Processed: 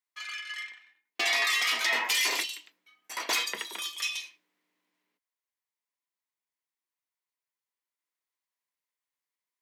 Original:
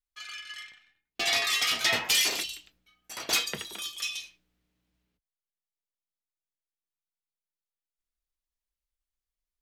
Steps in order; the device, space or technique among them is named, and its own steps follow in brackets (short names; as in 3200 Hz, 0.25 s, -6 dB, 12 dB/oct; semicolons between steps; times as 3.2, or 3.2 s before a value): laptop speaker (HPF 260 Hz 24 dB/oct; bell 1000 Hz +10.5 dB 0.27 oct; bell 2000 Hz +8 dB 0.47 oct; limiter -17.5 dBFS, peak gain reduction 8 dB)